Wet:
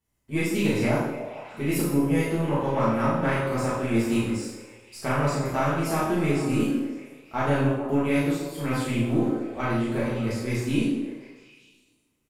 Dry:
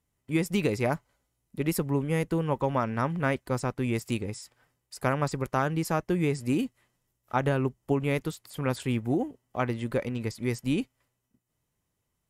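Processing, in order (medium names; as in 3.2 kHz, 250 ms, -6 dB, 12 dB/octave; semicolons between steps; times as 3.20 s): partial rectifier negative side -3 dB; doubling 35 ms -3 dB; on a send: repeats whose band climbs or falls 150 ms, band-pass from 310 Hz, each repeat 0.7 oct, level -5 dB; on the sum: two-slope reverb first 0.7 s, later 1.9 s, DRR -7.5 dB; trim -5.5 dB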